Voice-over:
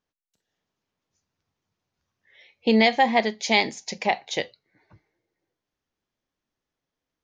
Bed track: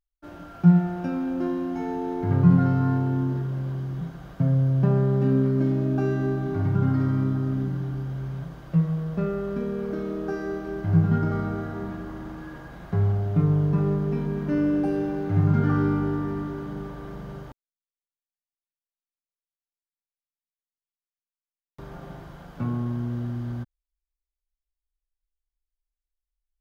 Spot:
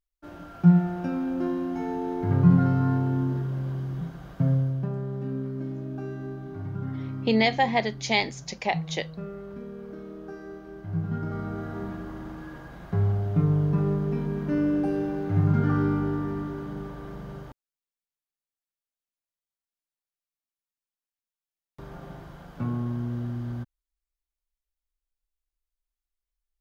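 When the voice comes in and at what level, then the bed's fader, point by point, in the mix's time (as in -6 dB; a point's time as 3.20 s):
4.60 s, -3.5 dB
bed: 4.52 s -1 dB
4.90 s -10.5 dB
10.93 s -10.5 dB
11.76 s -1.5 dB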